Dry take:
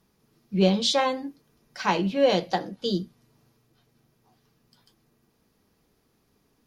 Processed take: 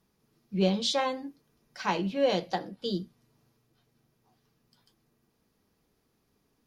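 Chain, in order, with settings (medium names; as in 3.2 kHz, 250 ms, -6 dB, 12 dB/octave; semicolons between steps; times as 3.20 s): 2.55–3.02 s: band-stop 6.3 kHz, Q 5.8; trim -5 dB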